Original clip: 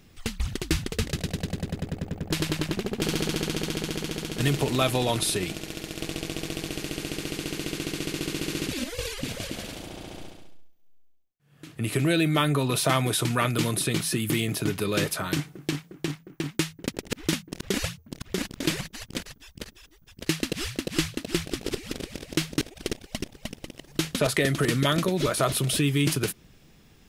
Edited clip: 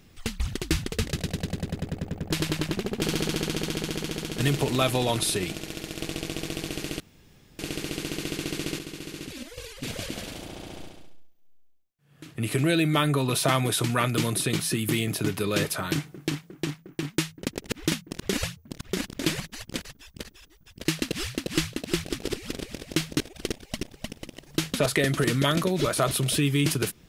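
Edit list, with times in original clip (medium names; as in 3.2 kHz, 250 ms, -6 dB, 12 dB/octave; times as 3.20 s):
7.00 s: insert room tone 0.59 s
8.20–9.24 s: gain -8 dB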